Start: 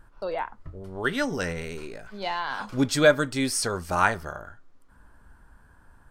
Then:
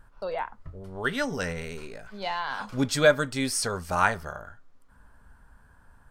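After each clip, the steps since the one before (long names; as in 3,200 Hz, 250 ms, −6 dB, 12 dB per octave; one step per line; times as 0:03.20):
parametric band 330 Hz −10.5 dB 0.23 octaves
level −1 dB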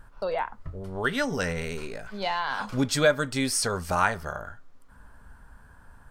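downward compressor 1.5 to 1, threshold −32 dBFS, peak gain reduction 7 dB
level +4.5 dB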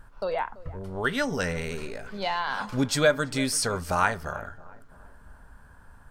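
feedback echo with a low-pass in the loop 335 ms, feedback 50%, low-pass 1,600 Hz, level −19 dB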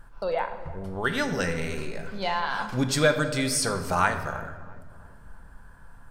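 rectangular room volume 1,100 cubic metres, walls mixed, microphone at 0.76 metres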